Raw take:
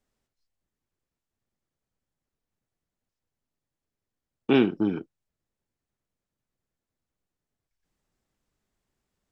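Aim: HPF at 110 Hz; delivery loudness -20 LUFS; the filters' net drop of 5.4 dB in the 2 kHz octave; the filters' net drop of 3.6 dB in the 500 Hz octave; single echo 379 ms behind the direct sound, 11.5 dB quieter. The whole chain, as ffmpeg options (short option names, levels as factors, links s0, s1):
-af "highpass=110,equalizer=f=500:t=o:g=-5,equalizer=f=2000:t=o:g=-7.5,aecho=1:1:379:0.266,volume=2.24"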